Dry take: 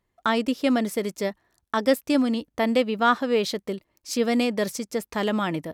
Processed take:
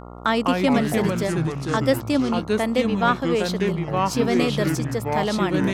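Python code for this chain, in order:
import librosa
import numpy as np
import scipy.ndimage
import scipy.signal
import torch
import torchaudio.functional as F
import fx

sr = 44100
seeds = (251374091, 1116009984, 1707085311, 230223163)

y = fx.echo_pitch(x, sr, ms=135, semitones=-4, count=3, db_per_echo=-3.0)
y = fx.rider(y, sr, range_db=10, speed_s=2.0)
y = fx.dmg_buzz(y, sr, base_hz=60.0, harmonics=23, level_db=-39.0, tilt_db=-3, odd_only=False)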